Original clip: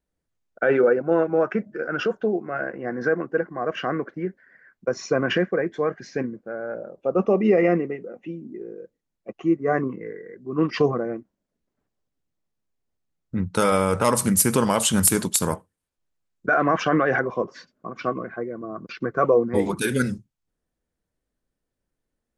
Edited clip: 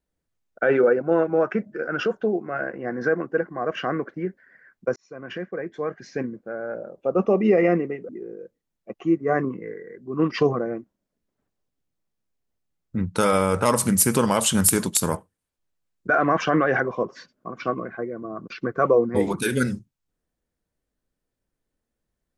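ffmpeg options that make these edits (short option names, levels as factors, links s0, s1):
-filter_complex "[0:a]asplit=3[s0][s1][s2];[s0]atrim=end=4.96,asetpts=PTS-STARTPTS,afade=t=out:st=4.956:d=0.004:c=hsin[s3];[s1]atrim=start=4.96:end=8.092,asetpts=PTS-STARTPTS,afade=t=in:d=1.45[s4];[s2]atrim=start=8.478[s5];[s3][s4]concat=n=2:v=0:a=1[s6];[s6][s5]acrossfade=d=0.004:c1=hsin:c2=hsin"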